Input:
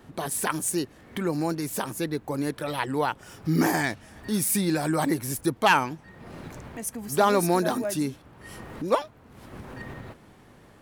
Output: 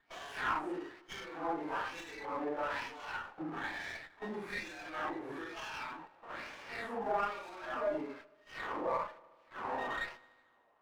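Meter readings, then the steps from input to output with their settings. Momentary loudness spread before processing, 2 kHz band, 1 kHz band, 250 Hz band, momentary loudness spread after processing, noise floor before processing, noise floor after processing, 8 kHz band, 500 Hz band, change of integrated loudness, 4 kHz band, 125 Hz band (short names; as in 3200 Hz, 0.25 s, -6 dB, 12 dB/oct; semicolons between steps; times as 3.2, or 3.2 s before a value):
20 LU, -8.0 dB, -9.5 dB, -17.0 dB, 10 LU, -53 dBFS, -67 dBFS, -27.5 dB, -11.5 dB, -13.0 dB, -12.0 dB, -24.5 dB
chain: phase scrambler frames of 0.2 s; gate -42 dBFS, range -22 dB; three-band isolator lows -13 dB, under 230 Hz, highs -21 dB, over 3000 Hz; compressor 6:1, threshold -36 dBFS, peak gain reduction 19 dB; limiter -33 dBFS, peak gain reduction 7.5 dB; harmonic-percussive split harmonic +7 dB; LFO band-pass sine 1.1 Hz 780–3600 Hz; on a send: dark delay 75 ms, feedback 73%, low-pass 2800 Hz, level -22 dB; on the sum: running maximum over 5 samples; gain +9 dB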